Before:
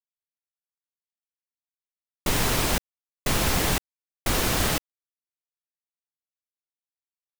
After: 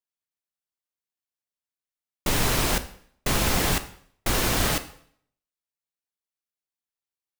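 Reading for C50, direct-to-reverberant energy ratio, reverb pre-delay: 14.5 dB, 10.0 dB, 11 ms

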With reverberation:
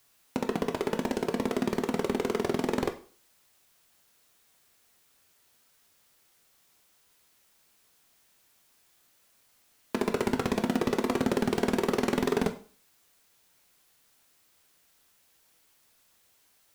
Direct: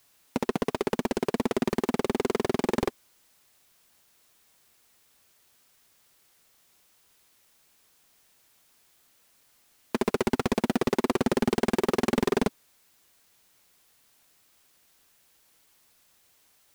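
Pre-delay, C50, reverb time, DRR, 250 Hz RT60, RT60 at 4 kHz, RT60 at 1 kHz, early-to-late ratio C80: 6 ms, 13.5 dB, 0.40 s, 6.5 dB, 0.40 s, 0.40 s, 0.40 s, 17.5 dB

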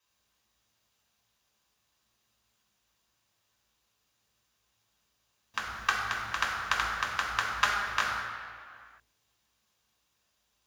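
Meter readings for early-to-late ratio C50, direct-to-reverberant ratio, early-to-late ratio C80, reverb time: 1.5 dB, -3.0 dB, 3.0 dB, no single decay rate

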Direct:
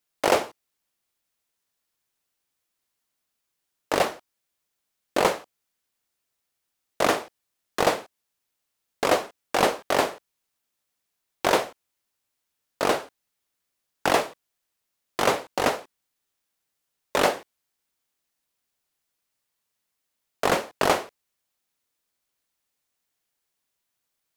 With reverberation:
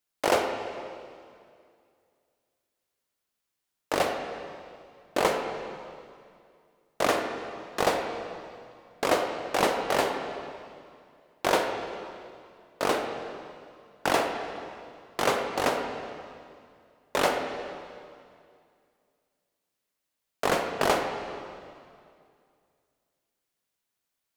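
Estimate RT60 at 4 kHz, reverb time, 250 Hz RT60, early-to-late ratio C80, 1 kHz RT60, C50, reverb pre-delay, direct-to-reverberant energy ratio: 2.1 s, 2.3 s, 2.4 s, 5.5 dB, 2.2 s, 4.5 dB, 36 ms, 4.0 dB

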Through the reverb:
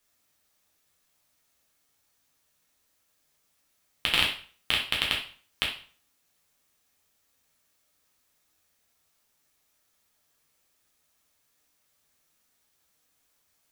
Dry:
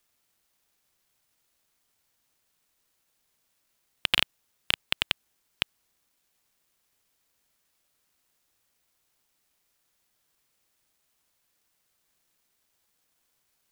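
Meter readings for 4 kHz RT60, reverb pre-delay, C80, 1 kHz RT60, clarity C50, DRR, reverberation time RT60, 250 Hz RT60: 0.40 s, 4 ms, 12.0 dB, 0.45 s, 6.0 dB, -3.0 dB, 0.45 s, 0.45 s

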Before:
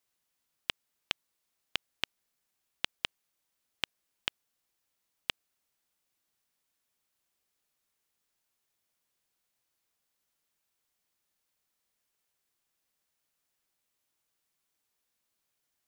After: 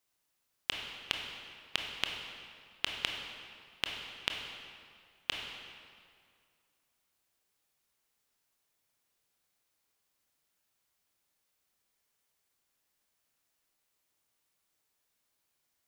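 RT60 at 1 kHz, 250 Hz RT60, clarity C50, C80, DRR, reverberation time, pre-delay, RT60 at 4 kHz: 2.2 s, 2.2 s, 3.0 dB, 4.5 dB, 1.5 dB, 2.2 s, 21 ms, 1.7 s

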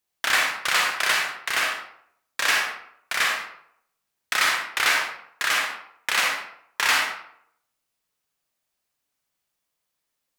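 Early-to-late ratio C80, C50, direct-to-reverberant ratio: 5.5 dB, 2.0 dB, 0.0 dB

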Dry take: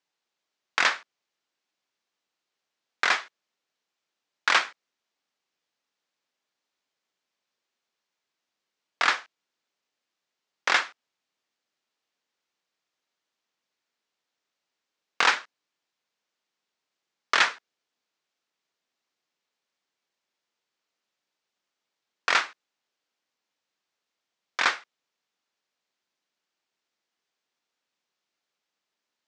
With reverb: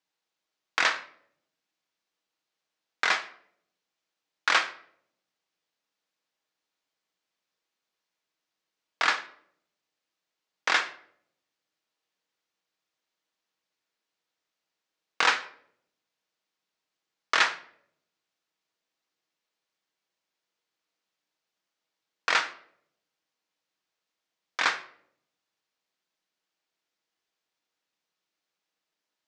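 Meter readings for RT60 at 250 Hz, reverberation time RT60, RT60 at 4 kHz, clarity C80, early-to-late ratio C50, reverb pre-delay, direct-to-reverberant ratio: 0.85 s, 0.65 s, 0.45 s, 17.5 dB, 15.0 dB, 6 ms, 9.0 dB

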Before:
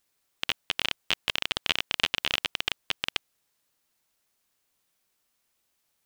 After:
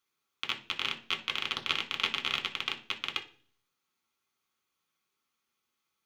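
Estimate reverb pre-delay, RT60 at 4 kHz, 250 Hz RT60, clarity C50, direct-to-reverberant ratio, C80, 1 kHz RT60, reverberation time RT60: 3 ms, 0.45 s, 0.65 s, 14.5 dB, 2.5 dB, 19.0 dB, 0.40 s, 0.45 s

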